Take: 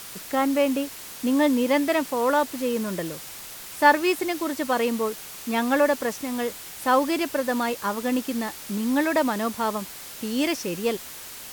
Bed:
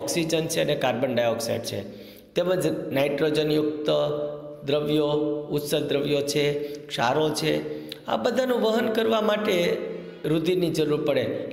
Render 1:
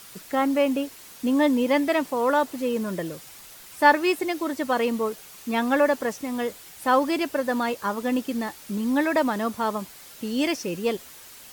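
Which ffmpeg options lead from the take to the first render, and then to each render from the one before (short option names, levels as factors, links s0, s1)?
-af "afftdn=nr=7:nf=-40"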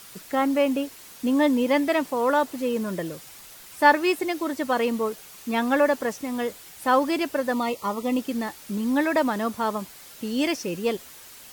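-filter_complex "[0:a]asettb=1/sr,asplit=3[s0][s1][s2];[s0]atrim=end=7.534[s3];[s1]atrim=start=7.53:end=8.19,asetpts=PTS-STARTPTS,afade=t=in:d=0.004:c=qsin,afade=t=out:st=0.656:d=0.004:c=qsin,asuperstop=centerf=1600:order=8:qfactor=3.5[s4];[s2]atrim=start=8.186[s5];[s3][s4]acrossfade=d=0.004:c1=hsin:c2=qsin[s6];[s6][s5]acrossfade=d=0.004:c1=qsin:c2=hsin"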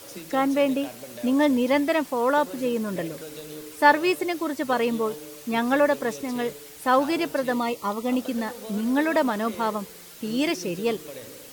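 -filter_complex "[1:a]volume=0.141[s0];[0:a][s0]amix=inputs=2:normalize=0"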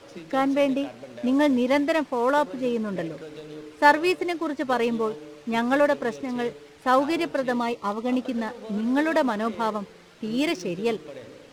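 -af "adynamicsmooth=sensitivity=7:basefreq=2900"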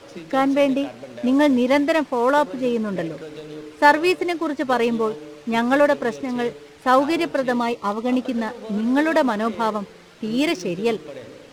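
-af "volume=1.58,alimiter=limit=0.794:level=0:latency=1"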